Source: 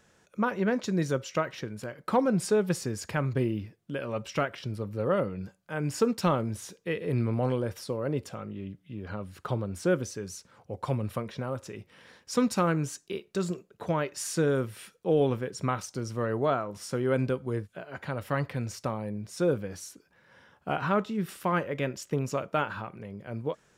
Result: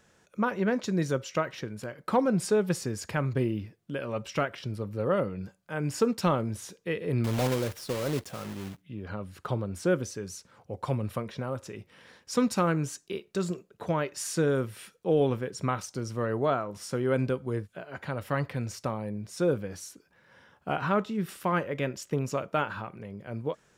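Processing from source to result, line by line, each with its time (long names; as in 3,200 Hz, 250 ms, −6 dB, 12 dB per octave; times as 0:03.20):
0:07.24–0:08.82: one scale factor per block 3 bits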